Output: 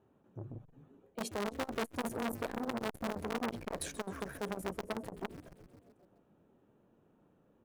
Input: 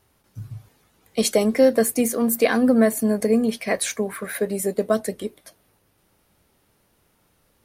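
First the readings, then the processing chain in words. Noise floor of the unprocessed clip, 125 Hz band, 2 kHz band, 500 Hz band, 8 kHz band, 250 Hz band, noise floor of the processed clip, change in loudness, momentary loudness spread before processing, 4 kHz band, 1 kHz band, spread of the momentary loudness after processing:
-65 dBFS, -12.5 dB, -14.0 dB, -20.0 dB, -20.5 dB, -19.0 dB, -70 dBFS, -19.0 dB, 17 LU, -14.0 dB, -9.5 dB, 13 LU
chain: local Wiener filter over 9 samples; high-pass 210 Hz 12 dB/octave; tilt shelf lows +9 dB, about 630 Hz; band-stop 2.1 kHz, Q 5.4; reverse; compression 12:1, threshold -24 dBFS, peak gain reduction 16 dB; reverse; peak limiter -22.5 dBFS, peak gain reduction 7.5 dB; in parallel at -6.5 dB: bit crusher 4-bit; on the sum: frequency-shifting echo 130 ms, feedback 64%, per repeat -130 Hz, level -16 dB; transformer saturation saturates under 1.4 kHz; trim -3 dB

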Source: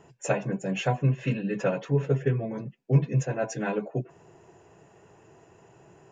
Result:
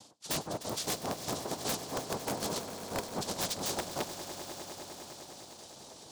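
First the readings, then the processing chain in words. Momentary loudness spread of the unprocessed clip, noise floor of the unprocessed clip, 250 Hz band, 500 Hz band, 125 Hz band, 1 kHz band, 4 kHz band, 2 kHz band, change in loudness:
9 LU, -58 dBFS, -10.5 dB, -9.0 dB, -19.5 dB, -2.0 dB, no reading, -7.0 dB, -8.5 dB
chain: reverb removal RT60 1.4 s; dynamic bell 480 Hz, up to +7 dB, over -40 dBFS, Q 0.82; noise-vocoded speech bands 2; reverse; compression 8:1, threshold -37 dBFS, peak gain reduction 24 dB; reverse; resonant high shelf 2.9 kHz +9 dB, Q 1.5; integer overflow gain 28 dB; on a send: echo with a slow build-up 101 ms, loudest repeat 5, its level -15 dB; on the sum: trim +3 dB

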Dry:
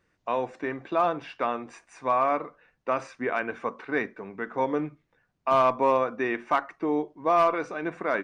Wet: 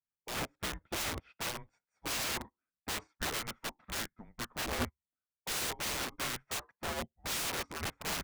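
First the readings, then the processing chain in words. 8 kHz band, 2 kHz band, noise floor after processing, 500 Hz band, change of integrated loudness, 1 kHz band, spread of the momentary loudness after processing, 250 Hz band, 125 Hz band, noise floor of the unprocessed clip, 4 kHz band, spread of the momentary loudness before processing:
no reading, -6.0 dB, under -85 dBFS, -18.0 dB, -10.0 dB, -16.5 dB, 9 LU, -13.0 dB, -2.0 dB, -74 dBFS, +9.0 dB, 12 LU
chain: frequency shift -220 Hz; integer overflow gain 27 dB; upward expansion 2.5:1, over -52 dBFS

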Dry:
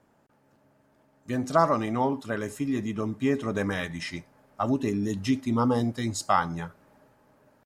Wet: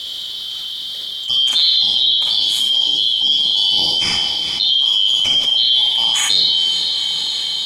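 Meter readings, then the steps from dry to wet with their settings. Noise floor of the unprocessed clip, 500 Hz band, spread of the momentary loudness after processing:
-65 dBFS, -12.0 dB, 12 LU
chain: four frequency bands reordered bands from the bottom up 3412; on a send: echo that smears into a reverb 464 ms, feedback 54%, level -15.5 dB; on the sum: Schroeder reverb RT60 0.58 s, DRR -2.5 dB; level flattener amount 70%; trim +2.5 dB

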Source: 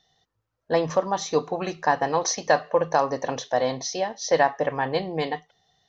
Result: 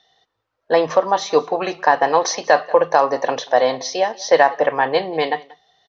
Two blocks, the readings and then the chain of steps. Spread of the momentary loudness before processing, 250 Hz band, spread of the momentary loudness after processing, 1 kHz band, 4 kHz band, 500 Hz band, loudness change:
7 LU, +3.0 dB, 7 LU, +7.5 dB, +6.0 dB, +7.0 dB, +7.0 dB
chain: three-band isolator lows -14 dB, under 310 Hz, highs -21 dB, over 5.4 kHz; delay 185 ms -23.5 dB; loudness maximiser +9.5 dB; trim -1 dB

